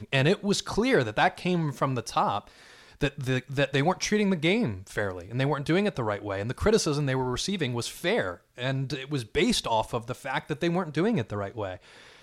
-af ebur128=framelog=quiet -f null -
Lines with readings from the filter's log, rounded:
Integrated loudness:
  I:         -27.5 LUFS
  Threshold: -37.7 LUFS
Loudness range:
  LRA:         1.8 LU
  Threshold: -47.8 LUFS
  LRA low:   -28.7 LUFS
  LRA high:  -26.9 LUFS